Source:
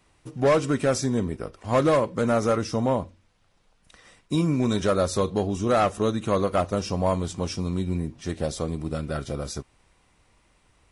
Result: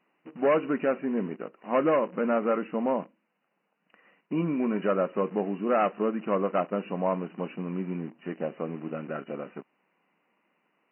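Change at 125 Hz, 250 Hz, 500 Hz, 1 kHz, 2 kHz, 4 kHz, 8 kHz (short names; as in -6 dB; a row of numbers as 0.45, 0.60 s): -11.0 dB, -3.5 dB, -3.0 dB, -3.0 dB, -3.0 dB, under -10 dB, under -40 dB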